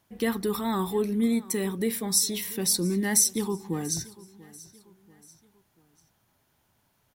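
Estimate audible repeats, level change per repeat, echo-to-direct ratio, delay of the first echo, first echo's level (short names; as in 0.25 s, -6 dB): 3, -7.0 dB, -20.0 dB, 0.688 s, -21.0 dB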